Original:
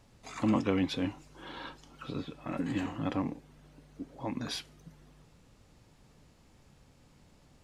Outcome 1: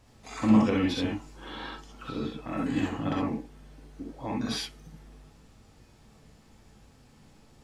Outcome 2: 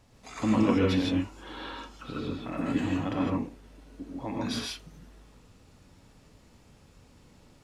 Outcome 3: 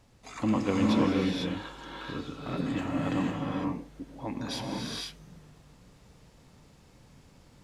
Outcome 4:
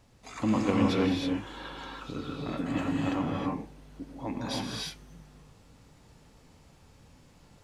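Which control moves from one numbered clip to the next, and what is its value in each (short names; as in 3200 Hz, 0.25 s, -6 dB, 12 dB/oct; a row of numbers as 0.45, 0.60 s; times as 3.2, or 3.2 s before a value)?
non-linear reverb, gate: 90, 180, 530, 350 ms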